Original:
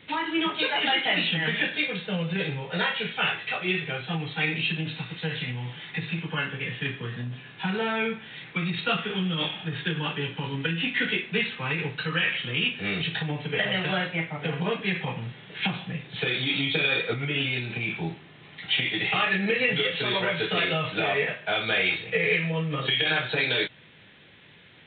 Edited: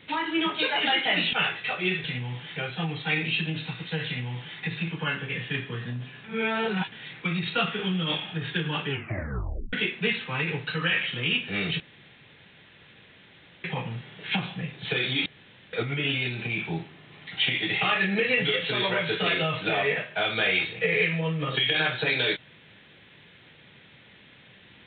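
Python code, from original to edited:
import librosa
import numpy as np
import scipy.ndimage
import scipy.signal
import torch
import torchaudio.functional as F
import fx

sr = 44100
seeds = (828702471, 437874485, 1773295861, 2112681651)

y = fx.edit(x, sr, fx.cut(start_s=1.33, length_s=1.83),
    fx.duplicate(start_s=5.37, length_s=0.52, to_s=3.87),
    fx.reverse_span(start_s=7.55, length_s=0.68),
    fx.tape_stop(start_s=10.2, length_s=0.84),
    fx.room_tone_fill(start_s=13.11, length_s=1.84),
    fx.room_tone_fill(start_s=16.57, length_s=0.47), tone=tone)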